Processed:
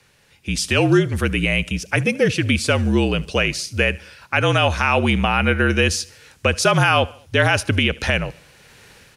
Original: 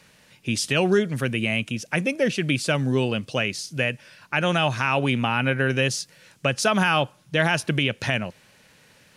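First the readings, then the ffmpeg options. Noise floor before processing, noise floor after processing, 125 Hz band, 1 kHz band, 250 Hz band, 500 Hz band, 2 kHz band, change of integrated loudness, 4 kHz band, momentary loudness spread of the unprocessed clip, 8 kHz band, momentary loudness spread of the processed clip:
-57 dBFS, -55 dBFS, +5.5 dB, +4.5 dB, +4.0 dB, +4.0 dB, +4.5 dB, +4.5 dB, +4.5 dB, 7 LU, +4.5 dB, 7 LU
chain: -af "aecho=1:1:74|148|222:0.0708|0.0368|0.0191,dynaudnorm=f=150:g=7:m=4.22,afreqshift=-46,volume=0.794"

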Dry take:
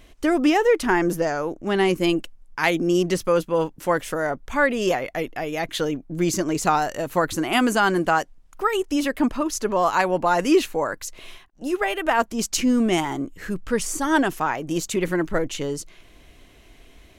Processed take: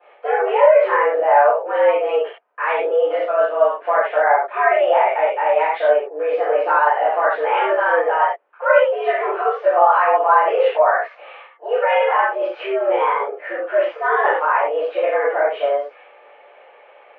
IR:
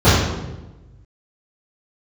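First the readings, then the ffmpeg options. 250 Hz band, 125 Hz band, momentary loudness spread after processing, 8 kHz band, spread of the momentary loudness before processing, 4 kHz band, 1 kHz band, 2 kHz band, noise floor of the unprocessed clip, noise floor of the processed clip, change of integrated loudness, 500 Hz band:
-17.5 dB, under -40 dB, 8 LU, under -40 dB, 9 LU, -6.0 dB, +8.5 dB, +4.5 dB, -51 dBFS, -48 dBFS, +5.0 dB, +7.5 dB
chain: -filter_complex "[0:a]alimiter=limit=0.133:level=0:latency=1:release=13[s0];[1:a]atrim=start_sample=2205,afade=t=out:st=0.18:d=0.01,atrim=end_sample=8379[s1];[s0][s1]afir=irnorm=-1:irlink=0,highpass=f=420:t=q:w=0.5412,highpass=f=420:t=q:w=1.307,lowpass=f=2500:t=q:w=0.5176,lowpass=f=2500:t=q:w=0.7071,lowpass=f=2500:t=q:w=1.932,afreqshift=140,volume=0.158"

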